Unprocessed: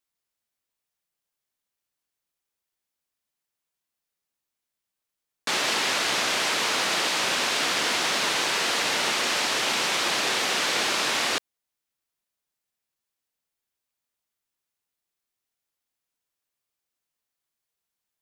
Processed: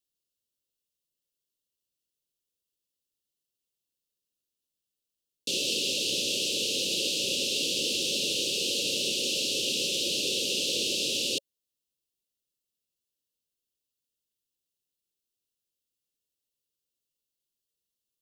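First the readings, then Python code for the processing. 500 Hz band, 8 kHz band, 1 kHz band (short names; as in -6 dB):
-3.5 dB, -2.0 dB, under -40 dB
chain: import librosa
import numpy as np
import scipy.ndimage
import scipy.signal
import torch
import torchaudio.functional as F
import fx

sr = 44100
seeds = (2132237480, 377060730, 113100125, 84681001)

y = scipy.signal.sosfilt(scipy.signal.cheby1(5, 1.0, [560.0, 2700.0], 'bandstop', fs=sr, output='sos'), x)
y = y * librosa.db_to_amplitude(-1.0)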